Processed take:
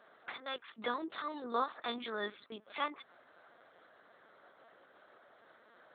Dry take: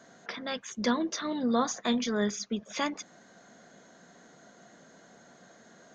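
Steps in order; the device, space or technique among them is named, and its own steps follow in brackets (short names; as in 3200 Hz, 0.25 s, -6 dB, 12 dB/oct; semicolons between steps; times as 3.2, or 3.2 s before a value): talking toy (LPC vocoder at 8 kHz pitch kept; HPF 380 Hz 12 dB/oct; bell 1200 Hz +7 dB 0.45 oct); gain -5 dB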